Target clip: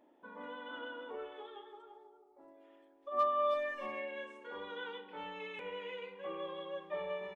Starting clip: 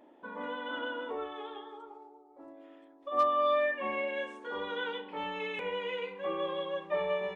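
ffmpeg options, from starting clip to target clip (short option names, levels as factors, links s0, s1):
-filter_complex "[0:a]asettb=1/sr,asplit=3[s0][s1][s2];[s0]atrim=end=1.134[s3];[s1]atrim=start=1.13:end=3.54,asetpts=PTS-STARTPTS,afade=t=in:d=0.004:c=qsin,afade=t=out:st=2.406:d=0.004:c=qsin,aecho=1:1:5:0.63,atrim=end_sample=106281[s4];[s2]atrim=start=3.536[s5];[s3][s4]acrossfade=d=0.004:c1=hsin:c2=qsin[s6];[s6][s5]acrossfade=d=0.004:c1=qsin:c2=hsin,asplit=2[s7][s8];[s8]adelay=320,highpass=300,lowpass=3400,asoftclip=type=hard:threshold=0.0708,volume=0.2[s9];[s7][s9]amix=inputs=2:normalize=0,volume=0.398"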